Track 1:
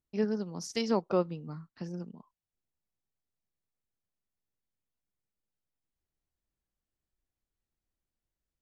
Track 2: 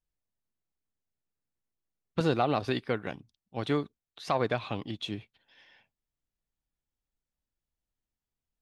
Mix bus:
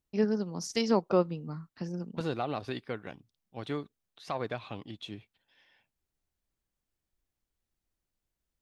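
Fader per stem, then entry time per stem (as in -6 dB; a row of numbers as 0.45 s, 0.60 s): +2.5 dB, -6.5 dB; 0.00 s, 0.00 s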